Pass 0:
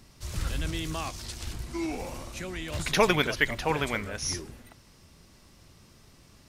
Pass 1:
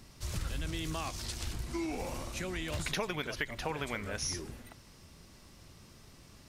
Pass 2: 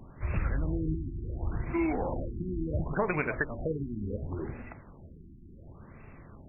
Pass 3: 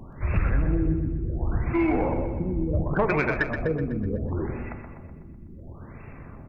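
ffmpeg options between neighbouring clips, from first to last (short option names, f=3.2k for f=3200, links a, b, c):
-af "acompressor=threshold=-32dB:ratio=8"
-af "bandreject=f=58.53:t=h:w=4,bandreject=f=117.06:t=h:w=4,bandreject=f=175.59:t=h:w=4,bandreject=f=234.12:t=h:w=4,bandreject=f=292.65:t=h:w=4,bandreject=f=351.18:t=h:w=4,bandreject=f=409.71:t=h:w=4,bandreject=f=468.24:t=h:w=4,bandreject=f=526.77:t=h:w=4,bandreject=f=585.3:t=h:w=4,bandreject=f=643.83:t=h:w=4,bandreject=f=702.36:t=h:w=4,bandreject=f=760.89:t=h:w=4,bandreject=f=819.42:t=h:w=4,bandreject=f=877.95:t=h:w=4,bandreject=f=936.48:t=h:w=4,bandreject=f=995.01:t=h:w=4,bandreject=f=1.05354k:t=h:w=4,bandreject=f=1.11207k:t=h:w=4,bandreject=f=1.1706k:t=h:w=4,bandreject=f=1.22913k:t=h:w=4,bandreject=f=1.28766k:t=h:w=4,afftfilt=real='re*lt(b*sr/1024,350*pow(2800/350,0.5+0.5*sin(2*PI*0.7*pts/sr)))':imag='im*lt(b*sr/1024,350*pow(2800/350,0.5+0.5*sin(2*PI*0.7*pts/sr)))':win_size=1024:overlap=0.75,volume=7.5dB"
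-filter_complex "[0:a]asoftclip=type=tanh:threshold=-19dB,asplit=2[a][b];[b]aecho=0:1:125|250|375|500|625|750|875:0.398|0.219|0.12|0.0662|0.0364|0.02|0.011[c];[a][c]amix=inputs=2:normalize=0,volume=6.5dB"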